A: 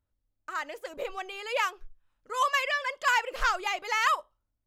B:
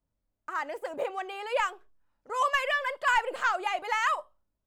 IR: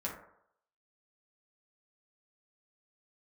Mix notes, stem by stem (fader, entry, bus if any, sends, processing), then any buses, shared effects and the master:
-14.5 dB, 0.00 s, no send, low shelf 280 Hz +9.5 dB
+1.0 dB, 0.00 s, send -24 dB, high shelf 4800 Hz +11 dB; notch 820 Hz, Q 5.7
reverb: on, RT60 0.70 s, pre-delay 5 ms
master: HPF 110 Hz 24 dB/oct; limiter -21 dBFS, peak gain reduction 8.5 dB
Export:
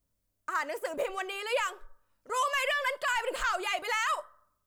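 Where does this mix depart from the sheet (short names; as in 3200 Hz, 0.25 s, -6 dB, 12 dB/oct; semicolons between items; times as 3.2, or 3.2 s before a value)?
stem B: polarity flipped; master: missing HPF 110 Hz 24 dB/oct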